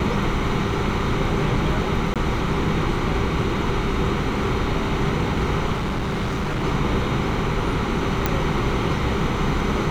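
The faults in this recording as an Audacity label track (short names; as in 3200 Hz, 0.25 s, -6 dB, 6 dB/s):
2.140000	2.160000	gap 17 ms
5.720000	6.640000	clipped -21 dBFS
8.260000	8.260000	pop -6 dBFS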